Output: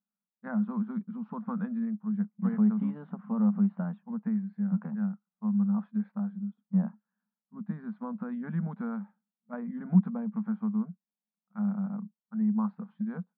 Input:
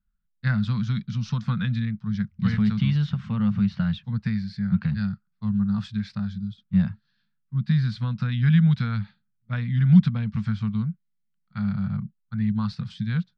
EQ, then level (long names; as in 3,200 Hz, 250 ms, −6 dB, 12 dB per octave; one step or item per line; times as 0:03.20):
dynamic equaliser 410 Hz, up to +5 dB, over −37 dBFS, Q 0.84
linear-phase brick-wall high-pass 180 Hz
transistor ladder low-pass 1,100 Hz, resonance 35%
+4.5 dB